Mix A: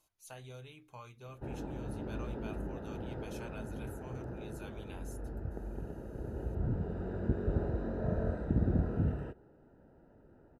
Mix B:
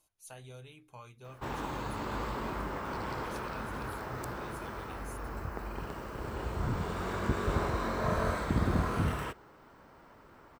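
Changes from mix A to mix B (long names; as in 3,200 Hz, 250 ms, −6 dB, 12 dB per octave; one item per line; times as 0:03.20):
speech: add parametric band 9,400 Hz +7 dB 0.3 octaves
background: remove moving average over 40 samples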